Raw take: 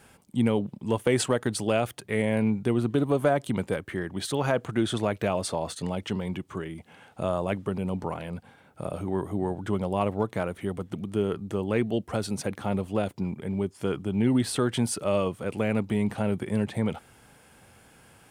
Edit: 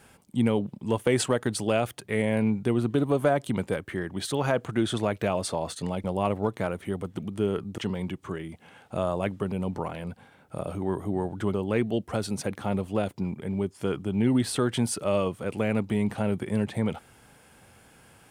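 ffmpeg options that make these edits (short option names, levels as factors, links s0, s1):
-filter_complex "[0:a]asplit=4[s0][s1][s2][s3];[s0]atrim=end=6.042[s4];[s1]atrim=start=9.798:end=11.542[s5];[s2]atrim=start=6.038:end=9.802[s6];[s3]atrim=start=11.538[s7];[s4][s5]acrossfade=d=0.004:c1=hsin:c2=hsin[s8];[s8][s6]acrossfade=d=0.004:c1=hsin:c2=hsin[s9];[s9][s7]acrossfade=d=0.004:c1=hsin:c2=hsin"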